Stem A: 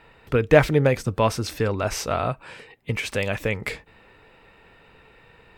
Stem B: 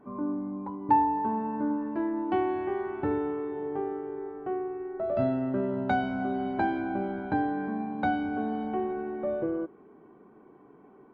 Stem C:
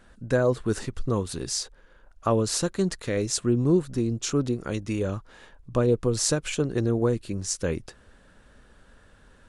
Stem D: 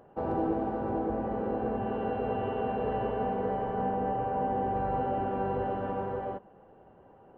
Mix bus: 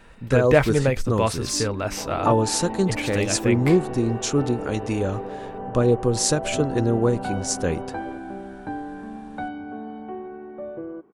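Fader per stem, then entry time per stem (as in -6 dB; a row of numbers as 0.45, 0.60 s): -2.0, -4.0, +3.0, -4.0 dB; 0.00, 1.35, 0.00, 1.80 s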